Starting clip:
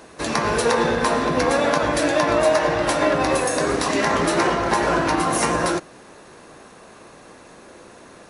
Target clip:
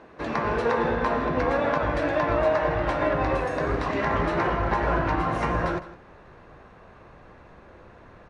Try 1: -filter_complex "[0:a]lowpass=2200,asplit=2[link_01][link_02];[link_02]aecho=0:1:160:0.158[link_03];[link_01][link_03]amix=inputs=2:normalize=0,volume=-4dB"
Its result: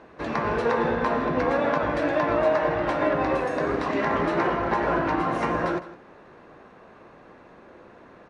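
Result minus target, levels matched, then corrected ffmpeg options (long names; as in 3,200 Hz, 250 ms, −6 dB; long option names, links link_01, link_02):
125 Hz band −4.5 dB
-filter_complex "[0:a]lowpass=2200,asubboost=boost=5:cutoff=110,asplit=2[link_01][link_02];[link_02]aecho=0:1:160:0.158[link_03];[link_01][link_03]amix=inputs=2:normalize=0,volume=-4dB"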